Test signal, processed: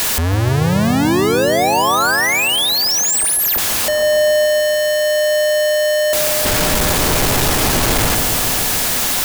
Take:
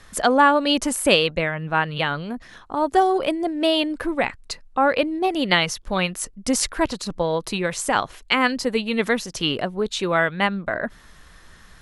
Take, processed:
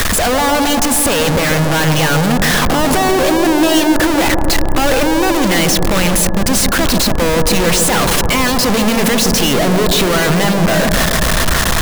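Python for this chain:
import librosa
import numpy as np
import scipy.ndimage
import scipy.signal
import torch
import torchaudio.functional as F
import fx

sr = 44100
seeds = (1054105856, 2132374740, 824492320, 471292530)

y = np.sign(x) * np.sqrt(np.mean(np.square(x)))
y = y + 10.0 ** (-44.0 / 20.0) * np.sin(2.0 * np.pi * 1700.0 * np.arange(len(y)) / sr)
y = fx.echo_bbd(y, sr, ms=143, stages=1024, feedback_pct=79, wet_db=-6)
y = y * 10.0 ** (8.5 / 20.0)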